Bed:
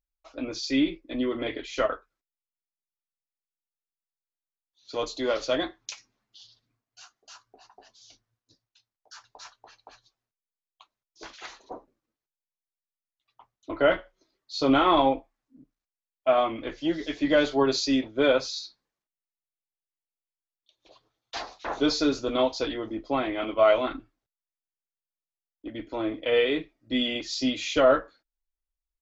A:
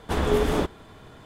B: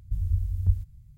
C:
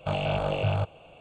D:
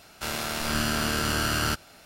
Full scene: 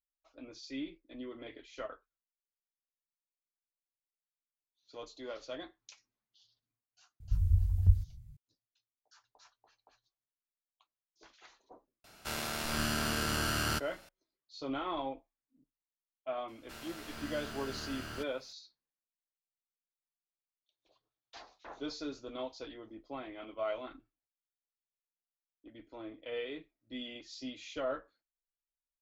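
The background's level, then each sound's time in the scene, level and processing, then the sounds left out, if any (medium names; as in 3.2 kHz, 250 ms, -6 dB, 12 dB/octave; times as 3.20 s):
bed -16.5 dB
7.20 s: add B -1.5 dB
12.04 s: add D -6.5 dB
16.48 s: add D -16 dB + slew-rate limiter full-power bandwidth 130 Hz
not used: A, C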